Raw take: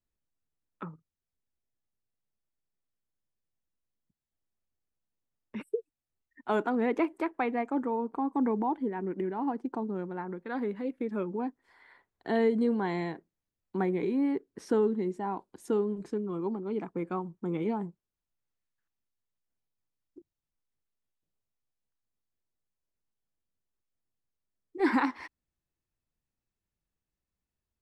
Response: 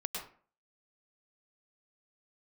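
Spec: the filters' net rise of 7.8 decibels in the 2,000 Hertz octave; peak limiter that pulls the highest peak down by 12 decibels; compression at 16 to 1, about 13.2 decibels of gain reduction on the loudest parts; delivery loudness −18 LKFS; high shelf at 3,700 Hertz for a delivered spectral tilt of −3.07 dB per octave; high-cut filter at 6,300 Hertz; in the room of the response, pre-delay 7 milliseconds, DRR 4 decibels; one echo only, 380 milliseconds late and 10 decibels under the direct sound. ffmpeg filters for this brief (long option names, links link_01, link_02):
-filter_complex "[0:a]lowpass=6300,equalizer=frequency=2000:width_type=o:gain=8.5,highshelf=frequency=3700:gain=4,acompressor=threshold=-33dB:ratio=16,alimiter=level_in=8dB:limit=-24dB:level=0:latency=1,volume=-8dB,aecho=1:1:380:0.316,asplit=2[link_01][link_02];[1:a]atrim=start_sample=2205,adelay=7[link_03];[link_02][link_03]afir=irnorm=-1:irlink=0,volume=-6dB[link_04];[link_01][link_04]amix=inputs=2:normalize=0,volume=22.5dB"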